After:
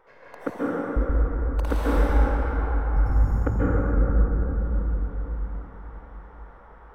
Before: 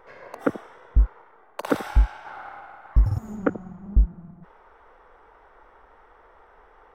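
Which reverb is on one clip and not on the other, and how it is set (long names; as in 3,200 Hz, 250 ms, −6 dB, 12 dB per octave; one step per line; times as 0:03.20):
dense smooth reverb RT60 4.9 s, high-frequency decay 0.25×, pre-delay 120 ms, DRR −8.5 dB
level −7 dB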